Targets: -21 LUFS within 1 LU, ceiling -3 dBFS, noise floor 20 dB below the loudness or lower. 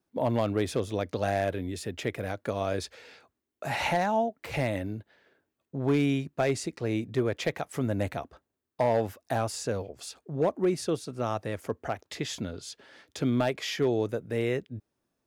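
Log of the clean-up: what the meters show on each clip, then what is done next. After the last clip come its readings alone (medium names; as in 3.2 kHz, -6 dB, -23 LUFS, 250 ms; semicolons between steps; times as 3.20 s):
clipped samples 0.4%; clipping level -18.0 dBFS; loudness -30.5 LUFS; peak level -18.0 dBFS; loudness target -21.0 LUFS
-> clip repair -18 dBFS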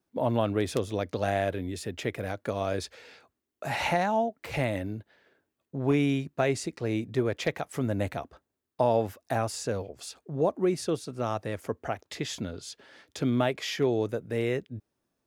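clipped samples 0.0%; loudness -30.0 LUFS; peak level -10.0 dBFS; loudness target -21.0 LUFS
-> trim +9 dB; peak limiter -3 dBFS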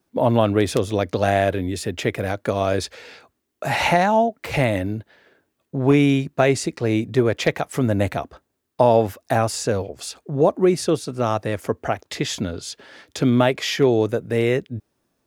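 loudness -21.0 LUFS; peak level -3.0 dBFS; noise floor -74 dBFS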